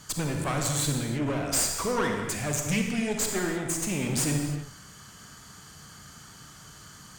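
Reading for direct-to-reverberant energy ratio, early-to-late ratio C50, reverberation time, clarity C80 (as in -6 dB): 2.0 dB, 3.0 dB, no single decay rate, 4.5 dB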